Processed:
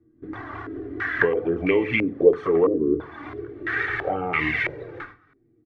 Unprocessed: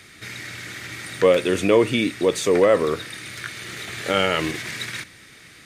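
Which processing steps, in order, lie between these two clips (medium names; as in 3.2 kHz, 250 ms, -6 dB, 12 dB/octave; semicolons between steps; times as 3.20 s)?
pitch bend over the whole clip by -2 st ending unshifted; gate -44 dBFS, range -16 dB; comb 2.6 ms, depth 39%; compression 2.5:1, threshold -31 dBFS, peak gain reduction 13.5 dB; touch-sensitive flanger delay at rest 9.2 ms, full sweep at -23.5 dBFS; on a send at -9 dB: reverberation RT60 0.35 s, pre-delay 7 ms; on the sum: careless resampling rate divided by 3×, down filtered, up hold; step-sequenced low-pass 3 Hz 320–2200 Hz; trim +7 dB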